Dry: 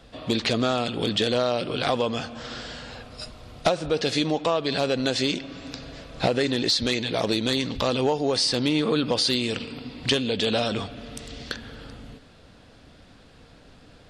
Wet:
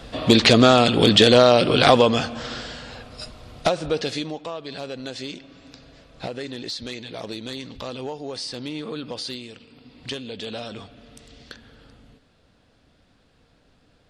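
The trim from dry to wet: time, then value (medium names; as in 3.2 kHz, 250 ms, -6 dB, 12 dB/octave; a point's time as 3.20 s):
1.92 s +10 dB
2.78 s +1 dB
3.92 s +1 dB
4.42 s -9 dB
9.31 s -9 dB
9.59 s -16 dB
10.00 s -9 dB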